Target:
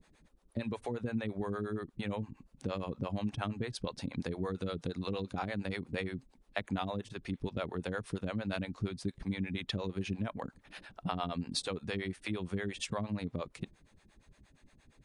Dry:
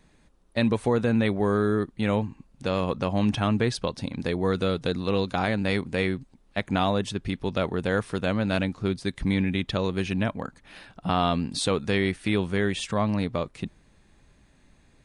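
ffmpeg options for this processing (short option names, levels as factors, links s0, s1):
-filter_complex "[0:a]acompressor=threshold=0.0398:ratio=6,acrossover=split=420[s0][s1];[s0]aeval=exprs='val(0)*(1-1/2+1/2*cos(2*PI*8.6*n/s))':c=same[s2];[s1]aeval=exprs='val(0)*(1-1/2-1/2*cos(2*PI*8.6*n/s))':c=same[s3];[s2][s3]amix=inputs=2:normalize=0"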